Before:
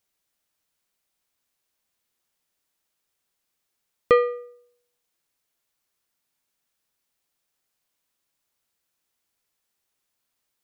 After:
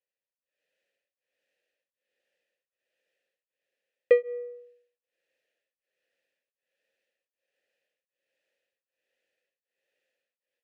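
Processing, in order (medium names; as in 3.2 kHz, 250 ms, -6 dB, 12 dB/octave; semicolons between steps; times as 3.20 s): vowel filter e; level rider gain up to 16 dB; tremolo of two beating tones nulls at 1.3 Hz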